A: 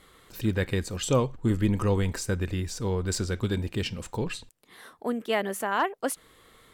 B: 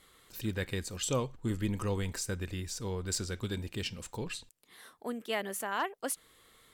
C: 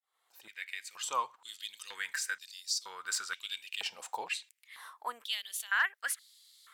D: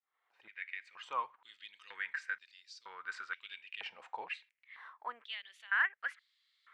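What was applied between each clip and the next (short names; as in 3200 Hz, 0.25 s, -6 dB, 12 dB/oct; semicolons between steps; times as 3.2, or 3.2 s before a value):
high shelf 2400 Hz +7.5 dB; gain -8.5 dB
opening faded in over 1.56 s; stepped high-pass 2.1 Hz 780–4600 Hz
synth low-pass 2100 Hz, resonance Q 1.7; gain -5.5 dB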